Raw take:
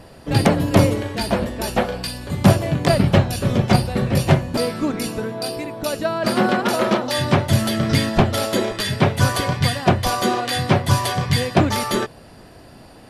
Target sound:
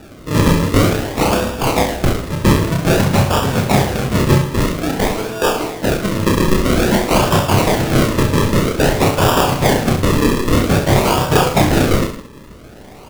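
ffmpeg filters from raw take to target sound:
ffmpeg -i in.wav -filter_complex "[0:a]crystalizer=i=7.5:c=0,aeval=exprs='0.562*(abs(mod(val(0)/0.562+3,4)-2)-1)':channel_layout=same,lowpass=10000,acrusher=samples=41:mix=1:aa=0.000001:lfo=1:lforange=41:lforate=0.51,asplit=2[link_01][link_02];[link_02]aecho=0:1:30|66|109.2|161|223.2:0.631|0.398|0.251|0.158|0.1[link_03];[link_01][link_03]amix=inputs=2:normalize=0,volume=-1dB" out.wav

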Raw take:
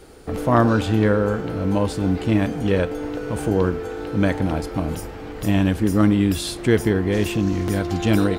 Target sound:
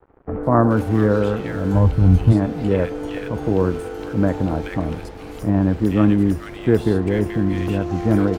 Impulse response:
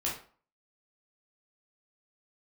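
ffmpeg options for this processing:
-filter_complex "[0:a]asplit=3[link_01][link_02][link_03];[link_01]afade=type=out:start_time=1.73:duration=0.02[link_04];[link_02]asubboost=boost=11:cutoff=120,afade=type=in:start_time=1.73:duration=0.02,afade=type=out:start_time=2.31:duration=0.02[link_05];[link_03]afade=type=in:start_time=2.31:duration=0.02[link_06];[link_04][link_05][link_06]amix=inputs=3:normalize=0,acrossover=split=230|2400[link_07][link_08][link_09];[link_09]acompressor=threshold=-48dB:ratio=6[link_10];[link_07][link_08][link_10]amix=inputs=3:normalize=0,aeval=exprs='sgn(val(0))*max(abs(val(0))-0.00668,0)':channel_layout=same,acrossover=split=1700[link_11][link_12];[link_12]adelay=430[link_13];[link_11][link_13]amix=inputs=2:normalize=0,volume=1.5dB"

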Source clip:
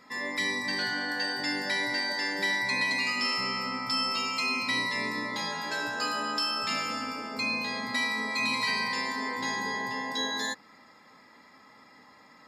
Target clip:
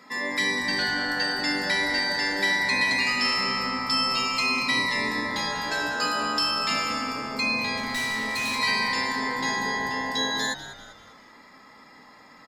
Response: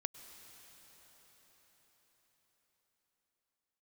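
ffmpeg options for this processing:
-filter_complex "[0:a]highpass=frequency=130:width=0.5412,highpass=frequency=130:width=1.3066,asettb=1/sr,asplit=3[link_01][link_02][link_03];[link_01]atrim=end=7.774[link_04];[link_02]atrim=start=7.77:end=8.59,asetpts=PTS-STARTPTS,afade=type=in:duration=0.004:curve=qsin,afade=type=out:start_time=0.816:duration=0.004:curve=qsin,asoftclip=type=hard:threshold=-30dB[link_05];[link_03]atrim=start=8.586[link_06];[link_04][link_05]acrossfade=duration=0.004:curve1=hsin:curve2=qsin[link_07];[link_07][link_06]acrossfade=duration=0.004:curve1=qsin:curve2=hsin,asplit=2[link_08][link_09];[link_09]asplit=4[link_10][link_11][link_12][link_13];[link_10]adelay=196,afreqshift=-120,volume=-13.5dB[link_14];[link_11]adelay=392,afreqshift=-240,volume=-20.6dB[link_15];[link_12]adelay=588,afreqshift=-360,volume=-27.8dB[link_16];[link_13]adelay=784,afreqshift=-480,volume=-34.9dB[link_17];[link_14][link_15][link_16][link_17]amix=inputs=4:normalize=0[link_18];[link_08][link_18]amix=inputs=2:normalize=0,volume=4.5dB"

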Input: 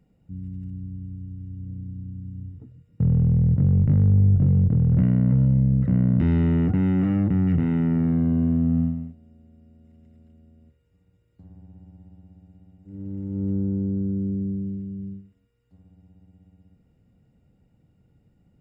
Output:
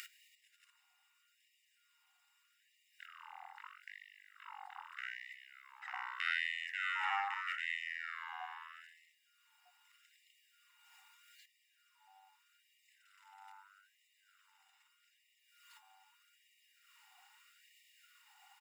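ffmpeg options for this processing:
ffmpeg -i in.wav -filter_complex "[0:a]acrossover=split=1500[link_01][link_02];[link_01]adelay=60[link_03];[link_03][link_02]amix=inputs=2:normalize=0,acompressor=mode=upward:threshold=-42dB:ratio=2.5,afftfilt=real='re*gte(b*sr/1024,730*pow(1800/730,0.5+0.5*sin(2*PI*0.8*pts/sr)))':imag='im*gte(b*sr/1024,730*pow(1800/730,0.5+0.5*sin(2*PI*0.8*pts/sr)))':win_size=1024:overlap=0.75,volume=10.5dB" out.wav

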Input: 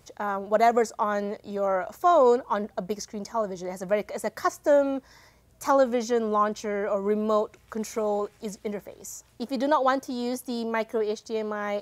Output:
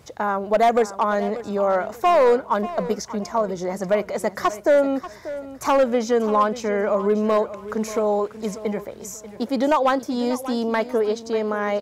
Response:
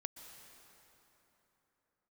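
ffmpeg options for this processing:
-filter_complex "[0:a]highpass=50,highshelf=frequency=4700:gain=-6,asplit=2[link_01][link_02];[link_02]acompressor=threshold=-30dB:ratio=6,volume=-2dB[link_03];[link_01][link_03]amix=inputs=2:normalize=0,asoftclip=type=hard:threshold=-14.5dB,aecho=1:1:588|1176|1764:0.188|0.0527|0.0148,volume=3dB"

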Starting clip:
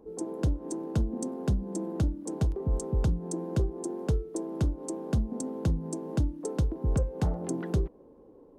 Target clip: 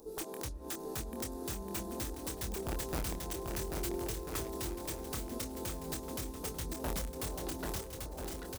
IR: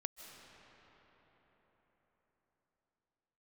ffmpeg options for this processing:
-filter_complex "[0:a]equalizer=frequency=160:width=0.38:gain=-7.5,bandreject=frequency=3100:width=5.8,bandreject=frequency=67.9:width_type=h:width=4,bandreject=frequency=135.8:width_type=h:width=4,bandreject=frequency=203.7:width_type=h:width=4,acompressor=threshold=-33dB:ratio=16,alimiter=level_in=9dB:limit=-24dB:level=0:latency=1:release=450,volume=-9dB,aexciter=amount=7.5:drive=5.6:freq=3200,aeval=exprs='(mod(53.1*val(0)+1,2)-1)/53.1':channel_layout=same,asplit=2[link_01][link_02];[link_02]adelay=26,volume=-6dB[link_03];[link_01][link_03]amix=inputs=2:normalize=0,aecho=1:1:790|1343|1730|2001|2191:0.631|0.398|0.251|0.158|0.1,asplit=2[link_04][link_05];[1:a]atrim=start_sample=2205,lowpass=2100[link_06];[link_05][link_06]afir=irnorm=-1:irlink=0,volume=-12dB[link_07];[link_04][link_07]amix=inputs=2:normalize=0,volume=2dB"

